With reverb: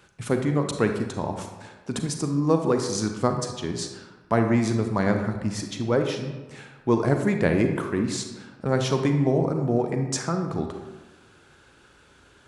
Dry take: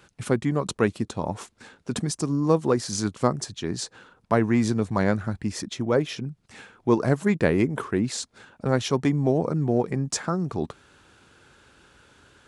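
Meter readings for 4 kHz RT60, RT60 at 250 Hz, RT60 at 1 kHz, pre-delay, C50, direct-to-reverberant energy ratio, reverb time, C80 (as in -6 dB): 0.70 s, 1.3 s, 1.2 s, 34 ms, 6.0 dB, 5.0 dB, 1.2 s, 8.0 dB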